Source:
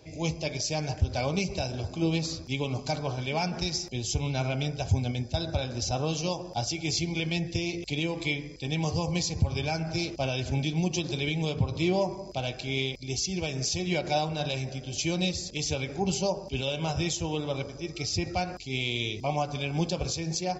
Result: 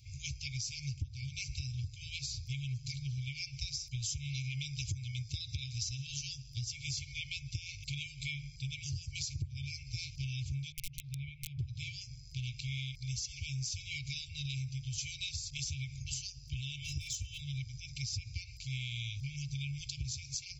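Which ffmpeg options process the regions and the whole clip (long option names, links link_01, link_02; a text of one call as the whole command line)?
ffmpeg -i in.wav -filter_complex "[0:a]asettb=1/sr,asplit=3[link_01][link_02][link_03];[link_01]atrim=end=4.024[link_04];[link_02]atrim=start=4.02:end=6.07,asetpts=PTS-STARTPTS,afade=type=in:duration=0.004:curve=qsin,afade=type=out:start_time=2.046:duration=0.004:curve=qsin,lowshelf=frequency=350:gain=-9.5,acontrast=83[link_05];[link_03]atrim=start=6.066[link_06];[link_04][link_05]acrossfade=duration=0.004:curve1=hsin:curve2=qsin[link_07];[link_07][link_06]acrossfade=duration=0.004:curve1=qsin:curve2=hsin,asettb=1/sr,asplit=3[link_08][link_09][link_10];[link_08]atrim=end=10.724[link_11];[link_09]atrim=start=10.72:end=11.59,asetpts=PTS-STARTPTS,afade=type=in:duration=0.004:curve=qsin,afade=type=out:start_time=0.866:duration=0.004:curve=qsin,lowpass=1200,lowshelf=frequency=280:gain=-6.5,aeval=exprs='(mod(15*val(0)+1,2)-1)/15':channel_layout=same[link_12];[link_10]atrim=start=11.586[link_13];[link_11][link_12]acrossfade=duration=0.004:curve1=hsin:curve2=qsin[link_14];[link_14][link_13]acrossfade=duration=0.004:curve1=qsin:curve2=hsin,asettb=1/sr,asplit=3[link_15][link_16][link_17];[link_15]atrim=end=16.824[link_18];[link_16]atrim=start=16.82:end=17.41,asetpts=PTS-STARTPTS,afade=type=in:duration=0.004:curve=qsin,afade=type=out:start_time=0.586:duration=0.004:curve=qsin,aecho=1:1:2.6:0.71,atrim=end_sample=26019,asoftclip=type=hard:threshold=-22dB[link_19];[link_17]atrim=start=17.406[link_20];[link_18][link_19]acrossfade=duration=0.004:curve1=hsin:curve2=qsin[link_21];[link_21][link_20]acrossfade=duration=0.004:curve1=qsin:curve2=hsin,afftfilt=real='re*(1-between(b*sr/4096,150,2100))':imag='im*(1-between(b*sr/4096,150,2100))':win_size=4096:overlap=0.75,equalizer=frequency=2400:width_type=o:width=2.8:gain=-7.5,acompressor=threshold=-37dB:ratio=8,volume=2dB" out.wav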